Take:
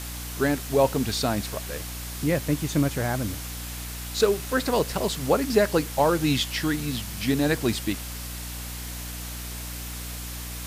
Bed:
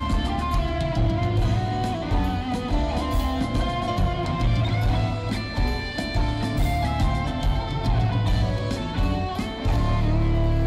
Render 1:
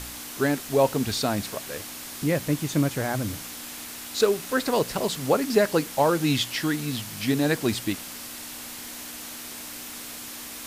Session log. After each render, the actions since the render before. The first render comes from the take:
hum removal 60 Hz, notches 3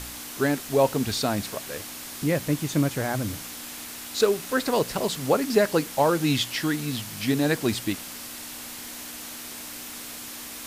no processing that can be heard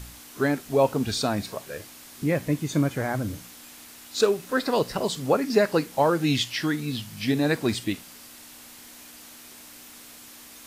noise reduction from a noise print 8 dB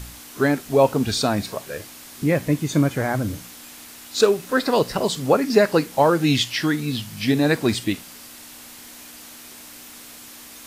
level +4.5 dB

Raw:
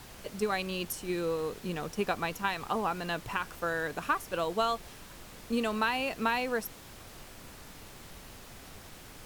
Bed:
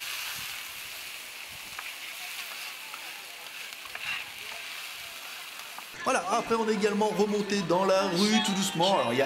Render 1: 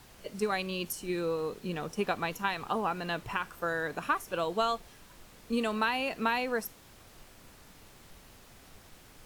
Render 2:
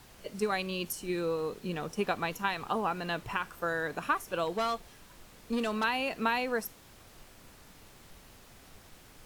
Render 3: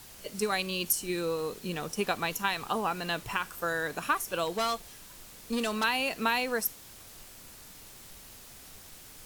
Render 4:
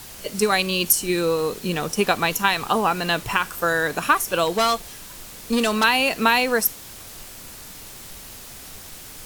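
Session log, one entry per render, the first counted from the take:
noise reduction from a noise print 6 dB
0:04.45–0:05.84: gain into a clipping stage and back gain 26 dB
high-shelf EQ 3,800 Hz +11.5 dB
level +10 dB

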